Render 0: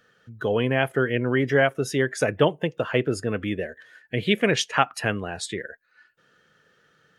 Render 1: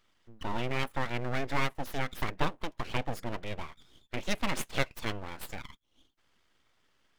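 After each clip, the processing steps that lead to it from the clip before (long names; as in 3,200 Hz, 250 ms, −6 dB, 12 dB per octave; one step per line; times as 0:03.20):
full-wave rectification
level −7.5 dB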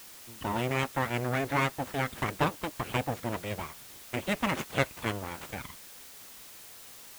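running median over 9 samples
high-pass filter 62 Hz
background noise white −53 dBFS
level +4 dB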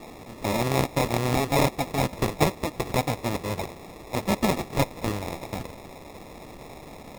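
decimation without filtering 29×
level +6 dB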